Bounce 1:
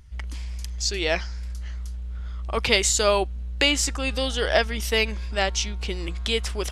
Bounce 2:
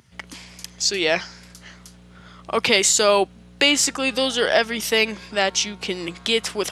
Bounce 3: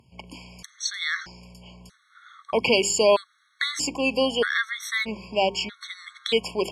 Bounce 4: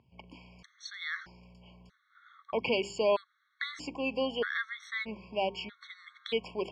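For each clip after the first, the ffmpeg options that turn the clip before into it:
-filter_complex "[0:a]highpass=f=130:w=0.5412,highpass=f=130:w=1.3066,asplit=2[a][b];[b]alimiter=limit=-13dB:level=0:latency=1:release=30,volume=0.5dB[c];[a][c]amix=inputs=2:normalize=0,volume=-1dB"
-af "aemphasis=mode=reproduction:type=cd,bandreject=f=50:t=h:w=6,bandreject=f=100:t=h:w=6,bandreject=f=150:t=h:w=6,bandreject=f=200:t=h:w=6,bandreject=f=250:t=h:w=6,bandreject=f=300:t=h:w=6,bandreject=f=350:t=h:w=6,bandreject=f=400:t=h:w=6,afftfilt=real='re*gt(sin(2*PI*0.79*pts/sr)*(1-2*mod(floor(b*sr/1024/1100),2)),0)':imag='im*gt(sin(2*PI*0.79*pts/sr)*(1-2*mod(floor(b*sr/1024/1100),2)),0)':win_size=1024:overlap=0.75"
-af "lowpass=3.2k,volume=-8.5dB"

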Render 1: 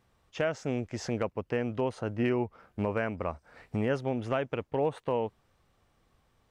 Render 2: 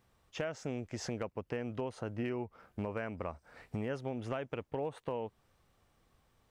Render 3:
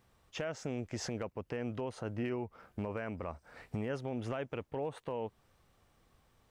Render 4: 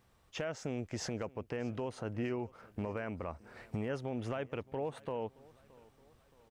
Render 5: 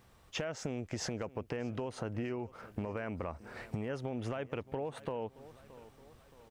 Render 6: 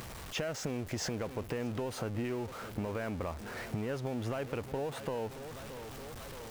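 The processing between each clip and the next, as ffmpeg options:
-af "highshelf=f=8.1k:g=5,acompressor=threshold=-34dB:ratio=2.5,volume=-2dB"
-af "alimiter=level_in=5.5dB:limit=-24dB:level=0:latency=1:release=12,volume=-5.5dB,volume=2dB"
-af "aecho=1:1:622|1244|1866:0.0708|0.0354|0.0177"
-af "acompressor=threshold=-40dB:ratio=6,volume=6dB"
-af "aeval=exprs='val(0)+0.5*0.00841*sgn(val(0))':c=same,acompressor=mode=upward:threshold=-44dB:ratio=2.5"

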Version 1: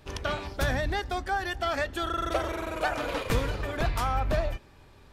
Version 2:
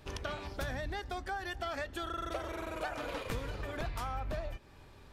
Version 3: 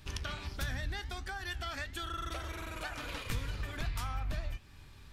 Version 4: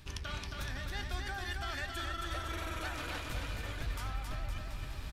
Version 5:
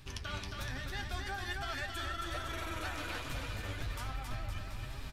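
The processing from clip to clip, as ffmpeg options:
-af "acompressor=threshold=-37dB:ratio=2.5,volume=-1.5dB"
-af "equalizer=f=550:t=o:w=2.2:g=-13.5,flanger=delay=9.5:depth=6.5:regen=85:speed=1.5:shape=triangular,volume=9dB"
-af "areverse,acompressor=threshold=-46dB:ratio=6,areverse,aecho=1:1:270|513|731.7|928.5|1106:0.631|0.398|0.251|0.158|0.1,volume=8dB"
-af "flanger=delay=7:depth=3.8:regen=45:speed=1.2:shape=triangular,volume=4dB"

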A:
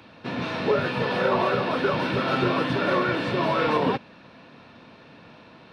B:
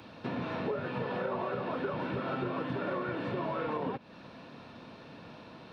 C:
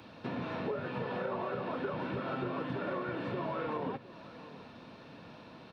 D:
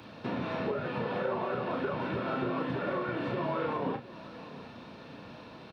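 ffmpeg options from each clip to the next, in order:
-filter_complex "[0:a]acrossover=split=3000[a][b];[b]acompressor=threshold=-54dB:ratio=4:attack=1:release=60[c];[a][c]amix=inputs=2:normalize=0,equalizer=f=2.1k:t=o:w=1.3:g=-4,acompressor=threshold=-33dB:ratio=4"
-af "aecho=1:1:710:0.133,volume=-2dB"
-filter_complex "[0:a]asplit=2[a][b];[b]adelay=34,volume=-7dB[c];[a][c]amix=inputs=2:normalize=0,volume=3dB"

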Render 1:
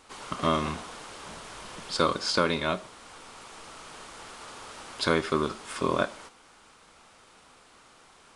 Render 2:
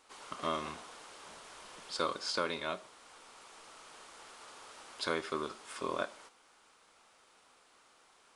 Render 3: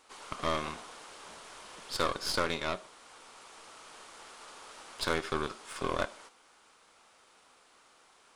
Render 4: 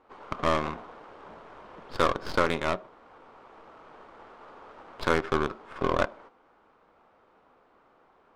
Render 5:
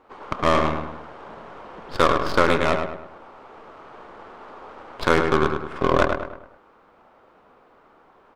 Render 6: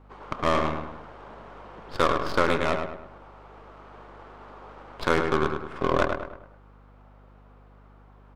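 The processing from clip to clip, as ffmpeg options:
-af "bass=f=250:g=-10,treble=f=4k:g=1,volume=-8.5dB"
-af "aeval=exprs='0.133*(cos(1*acos(clip(val(0)/0.133,-1,1)))-cos(1*PI/2))+0.015*(cos(8*acos(clip(val(0)/0.133,-1,1)))-cos(8*PI/2))':c=same,volume=2.5dB"
-af "adynamicsmooth=sensitivity=2.5:basefreq=1.1k,volume=7dB"
-filter_complex "[0:a]asplit=2[a][b];[b]adelay=104,lowpass=f=2.9k:p=1,volume=-5dB,asplit=2[c][d];[d]adelay=104,lowpass=f=2.9k:p=1,volume=0.44,asplit=2[e][f];[f]adelay=104,lowpass=f=2.9k:p=1,volume=0.44,asplit=2[g][h];[h]adelay=104,lowpass=f=2.9k:p=1,volume=0.44,asplit=2[i][j];[j]adelay=104,lowpass=f=2.9k:p=1,volume=0.44[k];[a][c][e][g][i][k]amix=inputs=6:normalize=0,volume=6dB"
-af "aeval=exprs='val(0)+0.00447*(sin(2*PI*50*n/s)+sin(2*PI*2*50*n/s)/2+sin(2*PI*3*50*n/s)/3+sin(2*PI*4*50*n/s)/4+sin(2*PI*5*50*n/s)/5)':c=same,volume=-4.5dB"

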